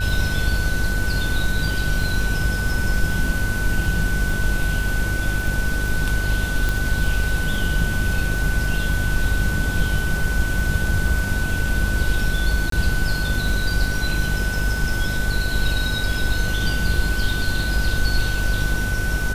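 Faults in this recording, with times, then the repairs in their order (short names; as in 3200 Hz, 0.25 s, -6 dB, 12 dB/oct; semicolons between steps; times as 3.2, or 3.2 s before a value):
buzz 50 Hz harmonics 17 -25 dBFS
crackle 21/s -27 dBFS
tone 1500 Hz -26 dBFS
6.69 pop
12.7–12.72 gap 23 ms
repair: de-click; notch 1500 Hz, Q 30; de-hum 50 Hz, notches 17; interpolate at 12.7, 23 ms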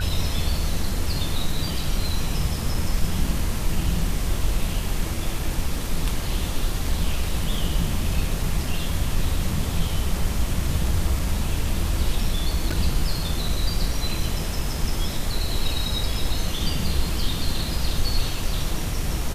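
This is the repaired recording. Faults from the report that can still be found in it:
none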